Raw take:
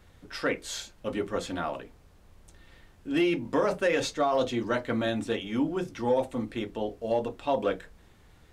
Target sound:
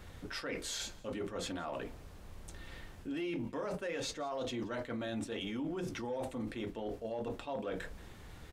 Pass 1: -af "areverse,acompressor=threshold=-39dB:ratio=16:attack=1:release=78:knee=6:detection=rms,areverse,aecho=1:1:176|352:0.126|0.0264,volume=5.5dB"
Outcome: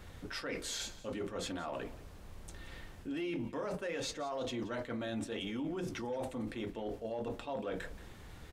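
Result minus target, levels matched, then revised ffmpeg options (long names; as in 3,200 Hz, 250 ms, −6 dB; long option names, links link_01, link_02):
echo-to-direct +6 dB
-af "areverse,acompressor=threshold=-39dB:ratio=16:attack=1:release=78:knee=6:detection=rms,areverse,aecho=1:1:176|352:0.0631|0.0133,volume=5.5dB"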